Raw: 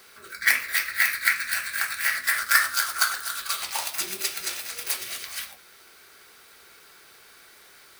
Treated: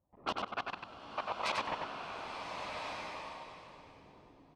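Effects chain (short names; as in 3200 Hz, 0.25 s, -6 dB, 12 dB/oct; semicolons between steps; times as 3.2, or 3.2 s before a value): HPF 90 Hz 12 dB/oct; spectral gate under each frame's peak -20 dB weak; low-pass opened by the level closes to 1200 Hz, open at -21 dBFS; high shelf 3000 Hz -5 dB; low-pass opened by the level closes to 790 Hz, open at -24 dBFS; high shelf 8100 Hz -6.5 dB; level quantiser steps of 24 dB; granular stretch 0.57×, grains 24 ms; on a send: feedback echo 95 ms, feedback 16%, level -4 dB; on the sum: bloom reverb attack 1.45 s, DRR 2.5 dB; gain +15.5 dB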